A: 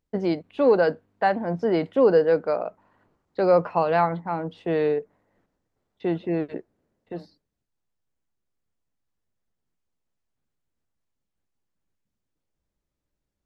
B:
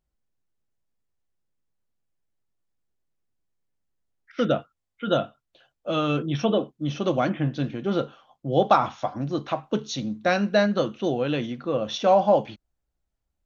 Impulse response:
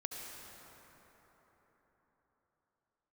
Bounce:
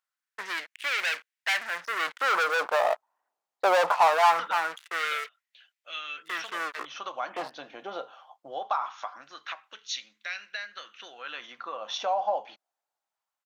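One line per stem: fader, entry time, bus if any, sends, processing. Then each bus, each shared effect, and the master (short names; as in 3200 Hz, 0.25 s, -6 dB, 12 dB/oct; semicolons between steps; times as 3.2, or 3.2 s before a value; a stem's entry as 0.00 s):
-10.0 dB, 0.25 s, no send, sample leveller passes 5
-0.5 dB, 0.00 s, no send, compressor 5:1, threshold -28 dBFS, peak gain reduction 14 dB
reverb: off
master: LFO high-pass sine 0.22 Hz 750–2100 Hz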